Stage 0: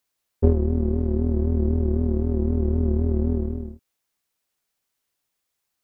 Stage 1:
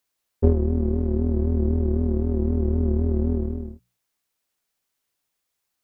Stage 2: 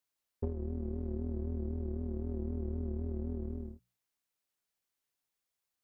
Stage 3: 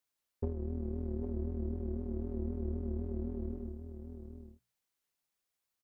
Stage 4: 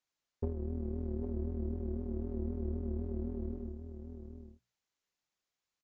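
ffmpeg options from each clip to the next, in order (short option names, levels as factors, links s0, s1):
-af "bandreject=f=60:t=h:w=6,bandreject=f=120:t=h:w=6,bandreject=f=180:t=h:w=6"
-af "acompressor=threshold=0.0631:ratio=6,volume=0.355"
-af "aecho=1:1:801:0.355"
-af "aresample=16000,aresample=44100"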